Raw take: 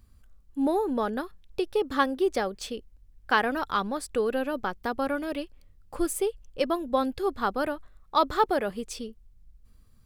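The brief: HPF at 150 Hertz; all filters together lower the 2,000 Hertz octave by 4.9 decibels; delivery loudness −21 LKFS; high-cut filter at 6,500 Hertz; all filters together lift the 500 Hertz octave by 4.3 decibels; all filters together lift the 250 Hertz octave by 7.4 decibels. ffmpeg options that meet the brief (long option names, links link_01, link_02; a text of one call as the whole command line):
ffmpeg -i in.wav -af "highpass=150,lowpass=6500,equalizer=frequency=250:width_type=o:gain=8.5,equalizer=frequency=500:width_type=o:gain=3,equalizer=frequency=2000:width_type=o:gain=-7.5,volume=4dB" out.wav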